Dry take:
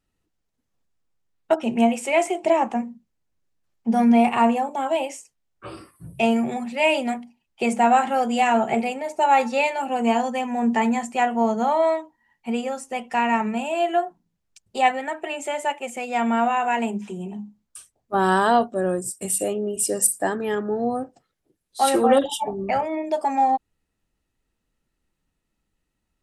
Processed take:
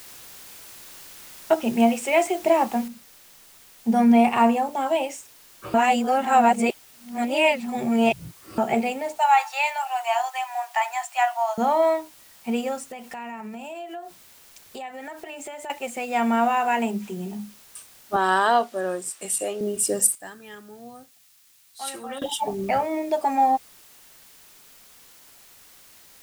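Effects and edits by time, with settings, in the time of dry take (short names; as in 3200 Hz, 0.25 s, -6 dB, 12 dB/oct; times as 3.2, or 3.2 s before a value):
2.88 noise floor step -44 dB -51 dB
5.74–8.58 reverse
9.18–11.58 steep high-pass 650 Hz 72 dB/oct
12.84–15.7 compressor 8:1, threshold -33 dBFS
18.16–19.61 weighting filter A
20.15–22.22 passive tone stack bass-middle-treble 5-5-5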